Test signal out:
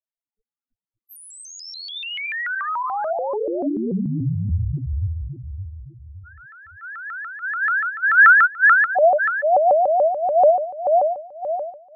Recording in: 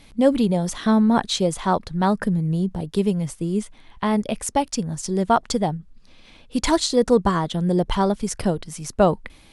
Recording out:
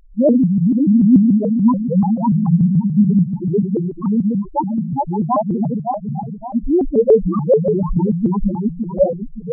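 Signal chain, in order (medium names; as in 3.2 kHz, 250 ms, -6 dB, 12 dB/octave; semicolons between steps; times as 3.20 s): backward echo that repeats 282 ms, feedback 63%, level -1 dB; treble shelf 4.5 kHz -11 dB; loudest bins only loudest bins 2; vibrato with a chosen wave saw up 6.9 Hz, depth 250 cents; trim +6.5 dB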